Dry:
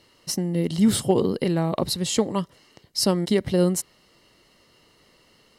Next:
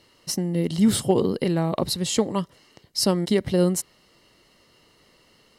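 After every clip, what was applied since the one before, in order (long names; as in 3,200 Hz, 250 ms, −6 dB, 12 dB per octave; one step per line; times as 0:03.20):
no processing that can be heard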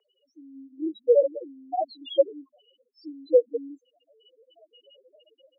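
automatic gain control gain up to 15 dB
spectral peaks only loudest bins 1
single-sideband voice off tune +100 Hz 410–2,800 Hz
level +8 dB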